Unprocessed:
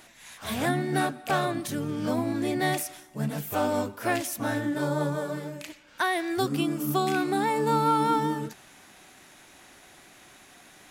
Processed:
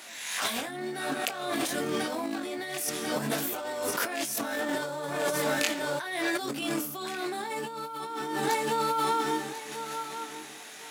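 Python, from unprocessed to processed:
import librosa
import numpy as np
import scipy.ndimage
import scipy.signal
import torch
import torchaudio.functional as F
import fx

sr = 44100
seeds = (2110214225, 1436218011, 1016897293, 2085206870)

p1 = fx.law_mismatch(x, sr, coded='A')
p2 = fx.high_shelf(p1, sr, hz=2200.0, db=8.0)
p3 = fx.doubler(p2, sr, ms=22.0, db=-3.5)
p4 = p3 + fx.echo_feedback(p3, sr, ms=1042, feedback_pct=21, wet_db=-12.5, dry=0)
p5 = fx.over_compress(p4, sr, threshold_db=-34.0, ratio=-1.0)
p6 = scipy.signal.sosfilt(scipy.signal.butter(2, 280.0, 'highpass', fs=sr, output='sos'), p5)
p7 = fx.high_shelf(p6, sr, hz=8600.0, db=-6.0)
p8 = fx.pre_swell(p7, sr, db_per_s=47.0)
y = p8 * 10.0 ** (3.0 / 20.0)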